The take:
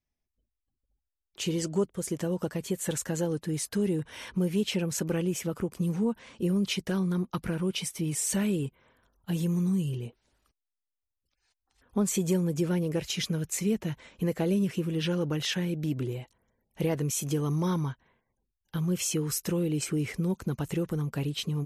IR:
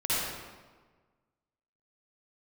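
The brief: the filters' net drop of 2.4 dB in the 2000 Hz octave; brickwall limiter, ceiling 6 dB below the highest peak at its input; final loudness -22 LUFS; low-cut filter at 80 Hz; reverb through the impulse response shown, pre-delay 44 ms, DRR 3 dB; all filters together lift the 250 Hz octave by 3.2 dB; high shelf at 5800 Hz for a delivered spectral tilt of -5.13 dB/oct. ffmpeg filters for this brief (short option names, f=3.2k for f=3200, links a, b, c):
-filter_complex "[0:a]highpass=80,equalizer=f=250:t=o:g=5.5,equalizer=f=2k:t=o:g=-4,highshelf=f=5.8k:g=5,alimiter=limit=-19dB:level=0:latency=1,asplit=2[a][b];[1:a]atrim=start_sample=2205,adelay=44[c];[b][c]afir=irnorm=-1:irlink=0,volume=-13.5dB[d];[a][d]amix=inputs=2:normalize=0,volume=5.5dB"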